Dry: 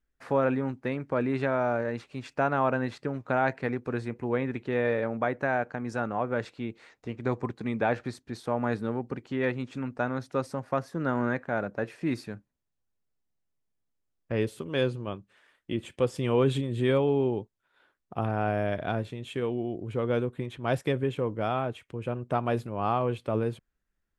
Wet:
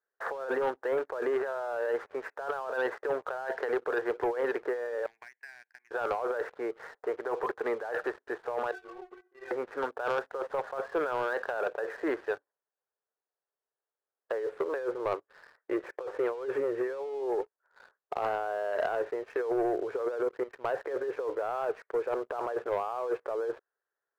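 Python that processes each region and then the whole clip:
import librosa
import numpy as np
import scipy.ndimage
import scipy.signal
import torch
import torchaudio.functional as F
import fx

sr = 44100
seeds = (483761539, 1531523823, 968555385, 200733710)

y = fx.chain(x, sr, fx.cheby2_highpass(hz=1400.0, order=4, stop_db=40),
    fx.band_squash(depth_pct=100), at=(5.06, 5.91))
y = fx.chain(y, sr, fx.stiff_resonator(f0_hz=360.0, decay_s=0.32, stiffness=0.008),
    fx.ensemble(), at=(8.71, 9.51))
y = fx.chain(y, sr, fx.lowpass(hz=4500.0, slope=12),
    fx.low_shelf(hz=120.0, db=9.0),
    fx.level_steps(step_db=15), at=(20.18, 20.77))
y = scipy.signal.sosfilt(scipy.signal.ellip(3, 1.0, 40, [420.0, 1700.0], 'bandpass', fs=sr, output='sos'), y)
y = fx.over_compress(y, sr, threshold_db=-38.0, ratio=-1.0)
y = fx.leveller(y, sr, passes=2)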